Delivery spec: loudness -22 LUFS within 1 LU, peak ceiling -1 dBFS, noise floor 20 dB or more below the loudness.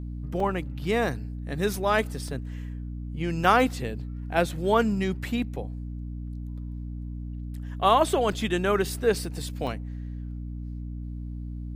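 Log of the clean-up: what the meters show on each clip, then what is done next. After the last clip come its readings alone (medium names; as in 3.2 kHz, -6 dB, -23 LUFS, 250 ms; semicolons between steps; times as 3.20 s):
dropouts 5; longest dropout 2.6 ms; hum 60 Hz; highest harmonic 300 Hz; hum level -32 dBFS; loudness -28.0 LUFS; peak level -7.0 dBFS; loudness target -22.0 LUFS
-> interpolate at 0.40/2.28/3.44/8.32/9.67 s, 2.6 ms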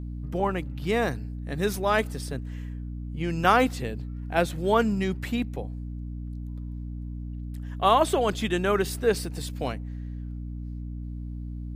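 dropouts 0; hum 60 Hz; highest harmonic 300 Hz; hum level -32 dBFS
-> hum notches 60/120/180/240/300 Hz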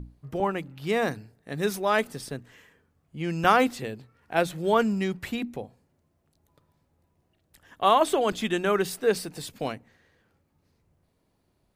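hum not found; loudness -26.5 LUFS; peak level -6.5 dBFS; loudness target -22.0 LUFS
-> trim +4.5 dB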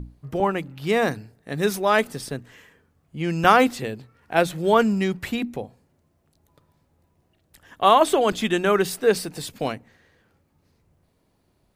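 loudness -22.0 LUFS; peak level -2.0 dBFS; noise floor -67 dBFS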